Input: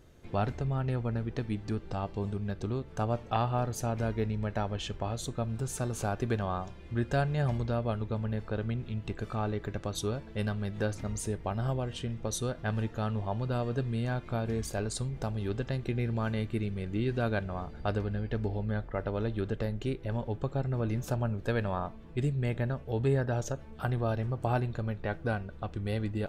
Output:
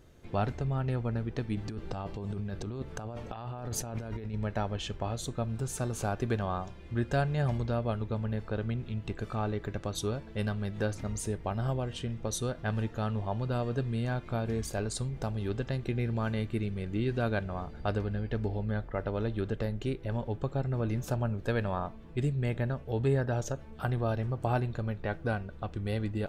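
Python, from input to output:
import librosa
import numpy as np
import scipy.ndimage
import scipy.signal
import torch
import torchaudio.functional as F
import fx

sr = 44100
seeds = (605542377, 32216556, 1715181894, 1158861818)

y = fx.over_compress(x, sr, threshold_db=-37.0, ratio=-1.0, at=(1.57, 4.34))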